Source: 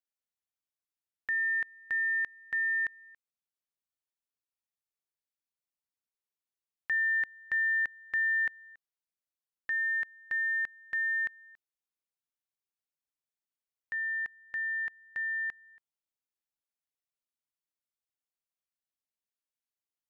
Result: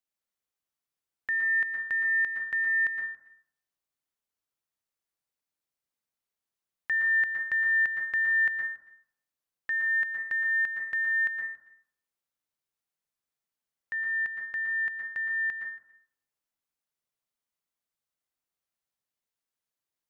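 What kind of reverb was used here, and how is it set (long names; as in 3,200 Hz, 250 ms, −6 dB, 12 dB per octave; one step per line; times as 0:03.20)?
dense smooth reverb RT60 0.64 s, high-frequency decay 0.3×, pre-delay 105 ms, DRR 1.5 dB
level +2 dB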